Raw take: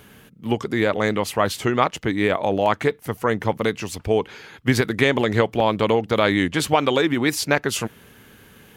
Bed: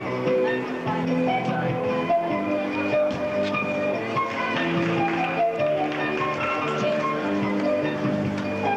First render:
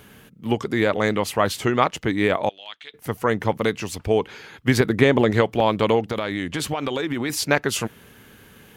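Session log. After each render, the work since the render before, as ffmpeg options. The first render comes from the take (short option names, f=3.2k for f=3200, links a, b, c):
-filter_complex "[0:a]asettb=1/sr,asplit=3[a][b][c];[a]atrim=end=2.494[d];[b]atrim=start=2.49:end=2.94,asetpts=PTS-STARTPTS,afade=t=in:d=0.004:c=qsin,afade=t=out:st=0.446:d=0.004:c=qsin,bandpass=f=3.4k:t=q:w=4.7[e];[c]atrim=start=2.936[f];[d][e]acrossfade=d=0.004:c1=hsin:c2=qsin[g];[g][f]acrossfade=d=0.004:c1=qsin:c2=hsin,asettb=1/sr,asplit=3[h][i][j];[h]atrim=end=4.804[k];[i]atrim=start=4.8:end=5.31,asetpts=PTS-STARTPTS,afade=t=in:d=0.004:c=qsin,afade=t=out:st=0.506:d=0.004:c=qsin,tiltshelf=f=1.2k:g=4[l];[j]atrim=start=5.306[m];[k][l]acrossfade=d=0.004:c1=hsin:c2=qsin[n];[n][m]acrossfade=d=0.004:c1=qsin:c2=hsin,asettb=1/sr,asplit=3[o][p][q];[o]atrim=end=6.084[r];[p]atrim=start=6.08:end=7.3,asetpts=PTS-STARTPTS,afade=t=in:d=0.004:c=qsin,afade=t=out:st=1.216:d=0.004:c=qsin,acompressor=threshold=-21dB:ratio=6:attack=3.2:release=140:knee=1:detection=peak[s];[q]atrim=start=7.296[t];[r][s]acrossfade=d=0.004:c1=hsin:c2=qsin[u];[u][t]acrossfade=d=0.004:c1=qsin:c2=hsin"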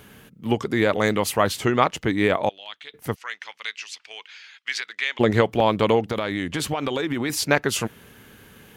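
-filter_complex "[0:a]asettb=1/sr,asplit=3[a][b][c];[a]atrim=end=0.894[d];[b]atrim=start=0.89:end=1.43,asetpts=PTS-STARTPTS,afade=t=in:d=0.004:c=qsin,afade=t=out:st=0.536:d=0.004:c=qsin,highshelf=f=7.1k:g=7.5[e];[c]atrim=start=1.426[f];[d][e]acrossfade=d=0.004:c1=hsin:c2=qsin[g];[g][f]acrossfade=d=0.004:c1=qsin:c2=hsin,asplit=3[h][i][j];[h]afade=t=out:st=3.14:d=0.02[k];[i]asuperpass=centerf=3500:order=4:qfactor=0.78,afade=t=in:st=3.14:d=0.02,afade=t=out:st=5.19:d=0.02[l];[j]afade=t=in:st=5.19:d=0.02[m];[k][l][m]amix=inputs=3:normalize=0"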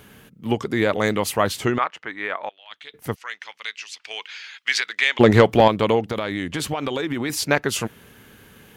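-filter_complex "[0:a]asettb=1/sr,asplit=3[a][b][c];[a]atrim=end=1.784[d];[b]atrim=start=1.78:end=2.71,asetpts=PTS-STARTPTS,afade=t=in:d=0.004:c=qsin,afade=t=out:st=0.926:d=0.004:c=qsin,bandpass=f=1.5k:t=q:w=1.3[e];[c]atrim=start=2.706[f];[d][e]acrossfade=d=0.004:c1=hsin:c2=qsin[g];[g][f]acrossfade=d=0.004:c1=qsin:c2=hsin,asettb=1/sr,asplit=3[h][i][j];[h]atrim=end=4.044[k];[i]atrim=start=4.04:end=5.68,asetpts=PTS-STARTPTS,afade=t=in:d=0.004:c=qsin,afade=t=out:st=1.636:d=0.004:c=qsin,acontrast=71[l];[j]atrim=start=5.676[m];[k][l]acrossfade=d=0.004:c1=hsin:c2=qsin[n];[n][m]acrossfade=d=0.004:c1=qsin:c2=hsin"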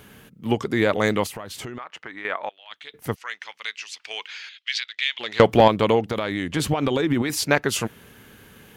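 -filter_complex "[0:a]asettb=1/sr,asplit=3[a][b][c];[a]atrim=end=1.264[d];[b]atrim=start=1.26:end=2.25,asetpts=PTS-STARTPTS,afade=t=in:d=0.004:c=qsin,afade=t=out:st=0.986:d=0.004:c=qsin,acompressor=threshold=-31dB:ratio=8:attack=3.2:release=140:knee=1:detection=peak[e];[c]atrim=start=2.246[f];[d][e]acrossfade=d=0.004:c1=hsin:c2=qsin[g];[g][f]acrossfade=d=0.004:c1=qsin:c2=hsin,asettb=1/sr,asplit=3[h][i][j];[h]atrim=end=4.494[k];[i]atrim=start=4.49:end=5.4,asetpts=PTS-STARTPTS,afade=t=in:d=0.004:c=qsin,afade=t=out:st=0.906:d=0.004:c=qsin,bandpass=f=3.5k:t=q:w=1.9[l];[j]atrim=start=5.396[m];[k][l]acrossfade=d=0.004:c1=hsin:c2=qsin[n];[n][m]acrossfade=d=0.004:c1=qsin:c2=hsin,asettb=1/sr,asplit=3[o][p][q];[o]atrim=end=6.564[r];[p]atrim=start=6.56:end=7.22,asetpts=PTS-STARTPTS,afade=t=in:d=0.004:c=qsin,afade=t=out:st=0.656:d=0.004:c=qsin,lowshelf=f=390:g=7.5[s];[q]atrim=start=7.216[t];[r][s]acrossfade=d=0.004:c1=hsin:c2=qsin[u];[u][t]acrossfade=d=0.004:c1=qsin:c2=hsin"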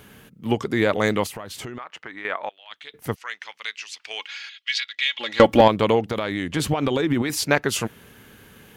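-filter_complex "[0:a]asettb=1/sr,asplit=3[a][b][c];[a]atrim=end=4.194[d];[b]atrim=start=4.19:end=5.61,asetpts=PTS-STARTPTS,afade=t=in:d=0.004:c=qsin,afade=t=out:st=1.416:d=0.004:c=qsin,aecho=1:1:3.6:0.65,atrim=end_sample=62622[e];[c]atrim=start=5.606[f];[d][e]acrossfade=d=0.004:c1=hsin:c2=qsin[g];[g][f]acrossfade=d=0.004:c1=qsin:c2=hsin"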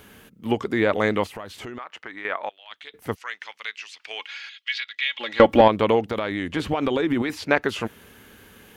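-filter_complex "[0:a]acrossover=split=3600[a][b];[b]acompressor=threshold=-46dB:ratio=4:attack=1:release=60[c];[a][c]amix=inputs=2:normalize=0,equalizer=f=140:t=o:w=0.55:g=-8.5"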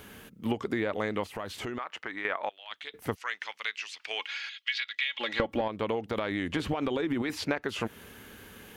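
-af "acompressor=threshold=-26dB:ratio=12"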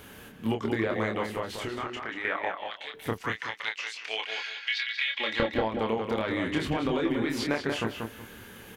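-filter_complex "[0:a]asplit=2[a][b];[b]adelay=27,volume=-4dB[c];[a][c]amix=inputs=2:normalize=0,asplit=2[d][e];[e]adelay=186,lowpass=f=3.5k:p=1,volume=-4.5dB,asplit=2[f][g];[g]adelay=186,lowpass=f=3.5k:p=1,volume=0.23,asplit=2[h][i];[i]adelay=186,lowpass=f=3.5k:p=1,volume=0.23[j];[d][f][h][j]amix=inputs=4:normalize=0"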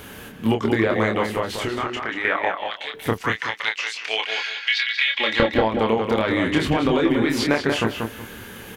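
-af "volume=8.5dB"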